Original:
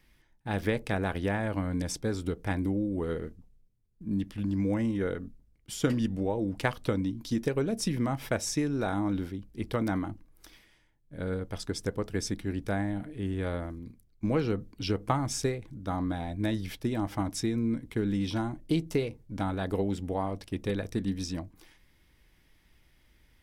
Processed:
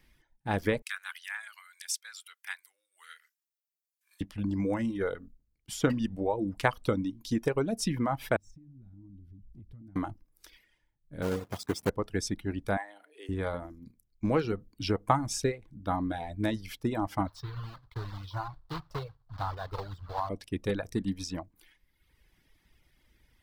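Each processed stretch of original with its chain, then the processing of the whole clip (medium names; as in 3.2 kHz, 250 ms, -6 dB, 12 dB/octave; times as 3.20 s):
0.82–4.21 s: inverse Chebyshev high-pass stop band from 260 Hz, stop band 80 dB + treble shelf 7.2 kHz +8 dB
8.36–9.96 s: companding laws mixed up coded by mu + FFT filter 120 Hz 0 dB, 320 Hz -12 dB, 460 Hz -28 dB + compression, threshold -45 dBFS
11.22–11.90 s: block-companded coder 3-bit + high-pass 100 Hz + tilt shelf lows +3 dB, about 890 Hz
12.77–13.29 s: high-pass 470 Hz 24 dB/octave + band-stop 7.4 kHz, Q 29
17.27–20.30 s: block-companded coder 3-bit + FFT filter 130 Hz 0 dB, 220 Hz -24 dB, 480 Hz -11 dB, 1.1 kHz +1 dB, 2.4 kHz -16 dB, 4.3 kHz -5 dB, 6.5 kHz -21 dB, 9.6 kHz -24 dB, 14 kHz -20 dB
whole clip: reverb removal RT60 1.1 s; dynamic bell 950 Hz, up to +5 dB, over -46 dBFS, Q 0.92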